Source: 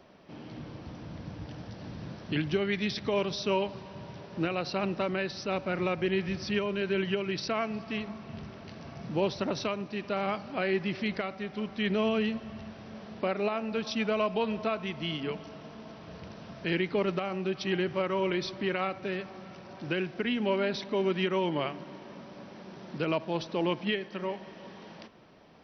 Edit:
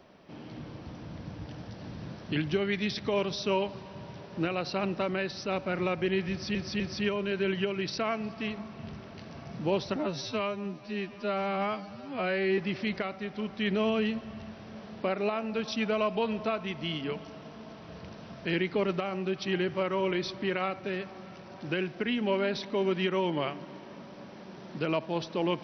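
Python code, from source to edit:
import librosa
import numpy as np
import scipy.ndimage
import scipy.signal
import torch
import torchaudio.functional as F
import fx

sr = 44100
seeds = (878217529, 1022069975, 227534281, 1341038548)

y = fx.edit(x, sr, fx.repeat(start_s=6.3, length_s=0.25, count=3),
    fx.stretch_span(start_s=9.46, length_s=1.31, factor=2.0), tone=tone)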